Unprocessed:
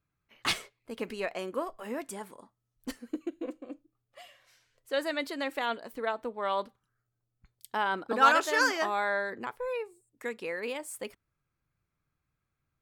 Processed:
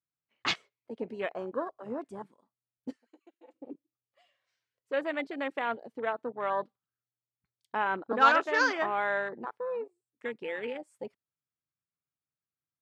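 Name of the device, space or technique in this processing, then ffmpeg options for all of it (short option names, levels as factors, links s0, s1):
over-cleaned archive recording: -filter_complex "[0:a]highpass=120,lowpass=5900,afwtdn=0.0141,asplit=3[s0][s1][s2];[s0]afade=t=out:st=2.95:d=0.02[s3];[s1]highpass=1300,afade=t=in:st=2.95:d=0.02,afade=t=out:st=3.54:d=0.02[s4];[s2]afade=t=in:st=3.54:d=0.02[s5];[s3][s4][s5]amix=inputs=3:normalize=0"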